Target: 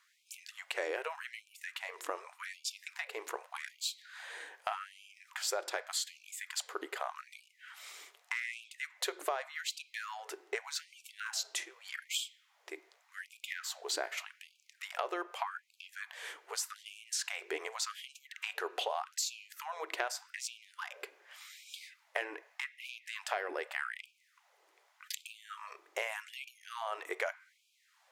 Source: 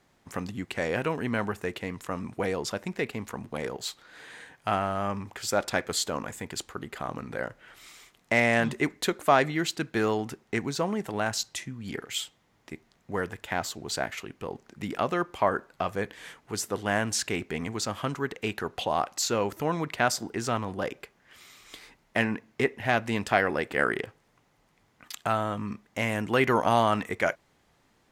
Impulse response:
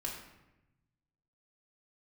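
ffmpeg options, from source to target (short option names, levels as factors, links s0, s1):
-filter_complex "[0:a]highpass=220,acompressor=threshold=0.0282:ratio=12,asplit=2[s0][s1];[1:a]atrim=start_sample=2205,lowpass=5400,adelay=7[s2];[s1][s2]afir=irnorm=-1:irlink=0,volume=0.168[s3];[s0][s3]amix=inputs=2:normalize=0,afftfilt=real='re*gte(b*sr/1024,300*pow(2300/300,0.5+0.5*sin(2*PI*0.84*pts/sr)))':imag='im*gte(b*sr/1024,300*pow(2300/300,0.5+0.5*sin(2*PI*0.84*pts/sr)))':win_size=1024:overlap=0.75"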